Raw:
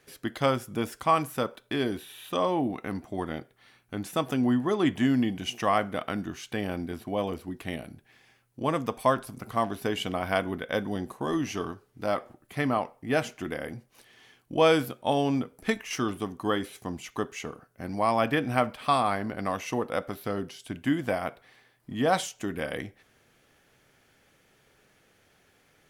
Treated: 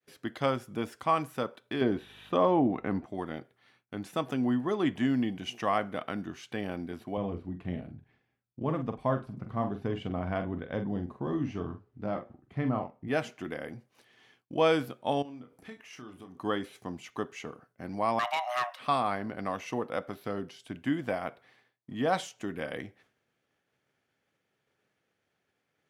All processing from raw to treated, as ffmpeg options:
ffmpeg -i in.wav -filter_complex "[0:a]asettb=1/sr,asplit=3[link_01][link_02][link_03];[link_01]atrim=end=1.814[link_04];[link_02]atrim=start=1.81:end=3.06,asetpts=PTS-STARTPTS,afade=type=in:duration=0.004:curve=qsin,afade=type=out:start_time=1.246:duration=0.004:curve=qsin,lowpass=frequency=1600:poles=1,acontrast=62,aeval=exprs='val(0)+0.00251*(sin(2*PI*50*n/s)+sin(2*PI*2*50*n/s)/2+sin(2*PI*3*50*n/s)/3+sin(2*PI*4*50*n/s)/4+sin(2*PI*5*50*n/s)/5)':channel_layout=same[link_05];[link_03]atrim=start=3.056[link_06];[link_04][link_05]acrossfade=duration=0.004:curve1=hsin:curve2=qsin[link_07];[link_07][link_06]acrossfade=duration=0.004:curve1=qsin:curve2=hsin,asettb=1/sr,asplit=3[link_08][link_09][link_10];[link_08]atrim=end=7.174[link_11];[link_09]atrim=start=7.17:end=13.08,asetpts=PTS-STARTPTS,afade=type=in:duration=0.004:curve=qsin,afade=type=out:start_time=5.906:duration=0.004:curve=qsin,aemphasis=mode=reproduction:type=riaa,flanger=delay=0.9:depth=4.8:regen=78:speed=1.1:shape=sinusoidal,asplit=2[link_12][link_13];[link_13]adelay=45,volume=-8dB[link_14];[link_12][link_14]amix=inputs=2:normalize=0,atrim=end_sample=260631[link_15];[link_10]atrim=start=13.076[link_16];[link_11][link_15]acrossfade=duration=0.004:curve1=hsin:curve2=qsin[link_17];[link_17][link_16]acrossfade=duration=0.004:curve1=qsin:curve2=hsin,asettb=1/sr,asplit=3[link_18][link_19][link_20];[link_18]atrim=end=15.224[link_21];[link_19]atrim=start=15.22:end=16.37,asetpts=PTS-STARTPTS,afade=type=in:duration=0.004:curve=qsin,afade=type=out:start_time=1.146:duration=0.004:curve=qsin,acompressor=threshold=-46dB:ratio=2.5:attack=3.2:release=140:knee=1:detection=peak,asplit=2[link_22][link_23];[link_23]adelay=32,volume=-7.5dB[link_24];[link_22][link_24]amix=inputs=2:normalize=0,atrim=end_sample=50715[link_25];[link_20]atrim=start=16.366[link_26];[link_21][link_25]acrossfade=duration=0.004:curve1=hsin:curve2=qsin[link_27];[link_27][link_26]acrossfade=duration=0.004:curve1=qsin:curve2=hsin,asettb=1/sr,asplit=3[link_28][link_29][link_30];[link_28]atrim=end=18.194[link_31];[link_29]atrim=start=18.19:end=18.79,asetpts=PTS-STARTPTS,afade=type=in:duration=0.004:curve=qsin,afade=type=out:start_time=0.596:duration=0.004:curve=qsin,highshelf=frequency=3200:gain=5.5,afreqshift=490,asoftclip=type=hard:threshold=-20.5dB[link_32];[link_30]atrim=start=18.786[link_33];[link_31][link_32]acrossfade=duration=0.004:curve1=hsin:curve2=qsin[link_34];[link_34][link_33]acrossfade=duration=0.004:curve1=qsin:curve2=hsin,agate=range=-33dB:threshold=-55dB:ratio=3:detection=peak,highpass=95,highshelf=frequency=7400:gain=-11,volume=-3.5dB" out.wav

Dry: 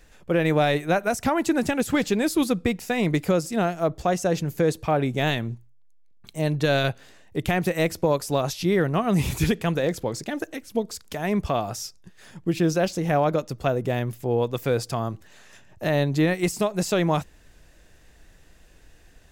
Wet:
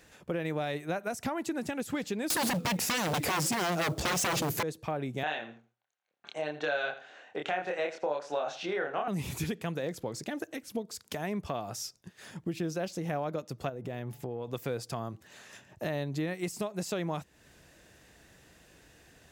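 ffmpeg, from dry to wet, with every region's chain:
ffmpeg -i in.wav -filter_complex "[0:a]asettb=1/sr,asplit=3[link_01][link_02][link_03];[link_01]atrim=end=2.304[link_04];[link_02]atrim=start=2.3:end=4.63,asetpts=PTS-STARTPTS,afade=type=in:duration=0.004:curve=qsin,afade=type=out:start_time=2.326:duration=0.004:curve=qsin,acompressor=threshold=-23dB:ratio=3:attack=3.2:release=140:knee=1:detection=peak,acrusher=bits=6:mode=log:mix=0:aa=0.000001,aeval=exprs='0.266*sin(PI/2*8.91*val(0)/0.266)':channel_layout=same[link_05];[link_03]atrim=start=4.626[link_06];[link_04][link_05]acrossfade=duration=0.004:curve1=hsin:curve2=qsin[link_07];[link_07][link_06]acrossfade=duration=0.004:curve1=qsin:curve2=hsin,asettb=1/sr,asplit=3[link_08][link_09][link_10];[link_08]atrim=end=5.234[link_11];[link_09]atrim=start=5.23:end=9.08,asetpts=PTS-STARTPTS,afade=type=in:duration=0.004:curve=qsin,afade=type=out:start_time=3.846:duration=0.004:curve=qsin,highpass=440,equalizer=frequency=530:width_type=q:width=4:gain=4,equalizer=frequency=760:width_type=q:width=4:gain=8,equalizer=frequency=1500:width_type=q:width=4:gain=9,equalizer=frequency=2700:width_type=q:width=4:gain=3,equalizer=frequency=4900:width_type=q:width=4:gain=-9,lowpass=frequency=5700:width=0.5412,lowpass=frequency=5700:width=1.3066,asplit=2[link_12][link_13];[link_13]adelay=27,volume=-2dB[link_14];[link_12][link_14]amix=inputs=2:normalize=0,atrim=end_sample=169785,aecho=1:1:83|166:0.158|0.0269,atrim=end_sample=169785[link_15];[link_10]atrim=start=9.076[link_16];[link_11][link_15]acrossfade=duration=0.004:curve1=hsin:curve2=qsin[link_17];[link_17][link_16]acrossfade=duration=0.004:curve1=qsin:curve2=hsin,asettb=1/sr,asplit=3[link_18][link_19][link_20];[link_18]atrim=end=13.694[link_21];[link_19]atrim=start=13.69:end=14.48,asetpts=PTS-STARTPTS,afade=type=in:duration=0.004:curve=qsin,afade=type=out:start_time=0.786:duration=0.004:curve=qsin,equalizer=frequency=11000:width_type=o:width=2.2:gain=-5,bandreject=frequency=142.4:width_type=h:width=4,bandreject=frequency=284.8:width_type=h:width=4,bandreject=frequency=427.2:width_type=h:width=4,bandreject=frequency=569.6:width_type=h:width=4,bandreject=frequency=712:width_type=h:width=4,bandreject=frequency=854.4:width_type=h:width=4,acompressor=threshold=-28dB:ratio=4:attack=3.2:release=140:knee=1:detection=peak[link_22];[link_20]atrim=start=14.476[link_23];[link_21][link_22]acrossfade=duration=0.004:curve1=hsin:curve2=qsin[link_24];[link_24][link_23]acrossfade=duration=0.004:curve1=qsin:curve2=hsin,highpass=97,acompressor=threshold=-36dB:ratio=2.5" out.wav

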